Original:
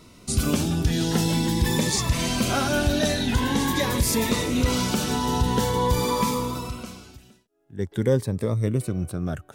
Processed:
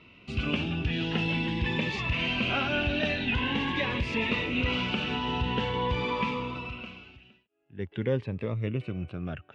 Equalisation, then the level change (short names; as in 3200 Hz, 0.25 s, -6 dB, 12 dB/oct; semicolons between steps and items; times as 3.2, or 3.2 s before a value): HPF 45 Hz; ladder low-pass 2900 Hz, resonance 75%; +5.0 dB